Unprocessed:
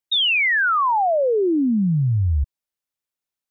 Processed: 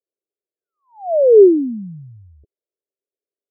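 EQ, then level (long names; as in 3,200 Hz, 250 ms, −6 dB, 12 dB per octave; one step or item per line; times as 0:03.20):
high-pass with resonance 400 Hz, resonance Q 4.9
Butterworth low-pass 660 Hz 72 dB per octave
0.0 dB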